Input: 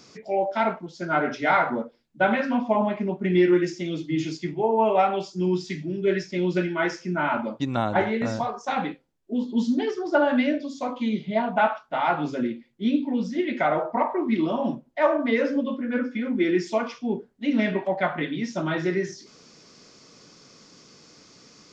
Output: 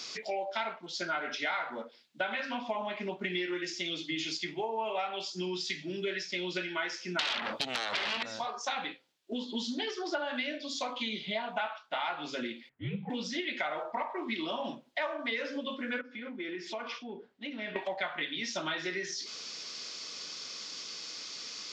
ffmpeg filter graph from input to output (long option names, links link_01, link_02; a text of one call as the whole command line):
ffmpeg -i in.wav -filter_complex "[0:a]asettb=1/sr,asplit=3[link_01][link_02][link_03];[link_01]atrim=end=7.194[link_04];[link_02]atrim=start=7.19:end=8.23,asetpts=PTS-STARTPTS,afade=type=in:duration=0.004:curve=qsin,afade=type=out:start_time=1.036:duration=0.004:curve=qsin,acompressor=threshold=-26dB:ratio=12:attack=3.2:release=140:knee=1:detection=peak,aeval=exprs='0.15*sin(PI/2*5.62*val(0)/0.15)':channel_layout=same[link_05];[link_03]atrim=start=8.226[link_06];[link_04][link_05]acrossfade=duration=0.004:curve1=hsin:curve2=qsin[link_07];[link_07][link_06]acrossfade=duration=0.004:curve1=qsin:curve2=hsin,asettb=1/sr,asplit=3[link_08][link_09][link_10];[link_08]atrim=end=12.694[link_11];[link_09]atrim=start=12.69:end=13.1,asetpts=PTS-STARTPTS,afade=type=in:duration=0.004:curve=qsin,afade=type=out:start_time=0.406:duration=0.004:curve=qsin,lowpass=frequency=1800:width=0.5412,lowpass=frequency=1800:width=1.3066,afreqshift=-98[link_12];[link_10]atrim=start=13.096[link_13];[link_11][link_12]acrossfade=duration=0.004:curve1=hsin:curve2=qsin[link_14];[link_14][link_13]acrossfade=duration=0.004:curve1=qsin:curve2=hsin,asettb=1/sr,asplit=3[link_15][link_16][link_17];[link_15]atrim=end=16.014[link_18];[link_16]atrim=start=16.01:end=17.76,asetpts=PTS-STARTPTS,afade=type=in:duration=0.004:curve=qsin,afade=type=out:start_time=1.746:duration=0.004:curve=qsin,lowpass=frequency=1500:poles=1,acompressor=threshold=-40dB:ratio=2.5:attack=3.2:release=140:knee=1:detection=peak[link_19];[link_17]atrim=start=17.756[link_20];[link_18][link_19]acrossfade=duration=0.004:curve1=hsin:curve2=qsin[link_21];[link_21][link_20]acrossfade=duration=0.004:curve1=qsin:curve2=hsin,highpass=frequency=770:poles=1,equalizer=frequency=3600:width=0.85:gain=11,acompressor=threshold=-37dB:ratio=5,volume=4dB" out.wav